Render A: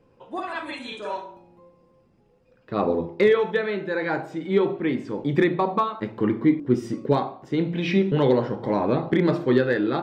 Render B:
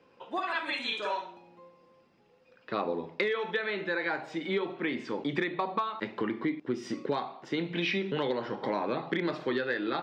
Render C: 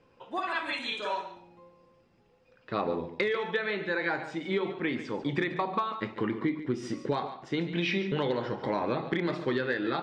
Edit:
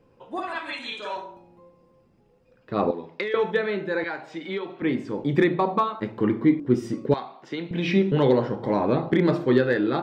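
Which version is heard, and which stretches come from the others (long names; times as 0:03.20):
A
0:00.58–0:01.16: punch in from C
0:02.91–0:03.34: punch in from B
0:04.04–0:04.82: punch in from B
0:07.14–0:07.71: punch in from B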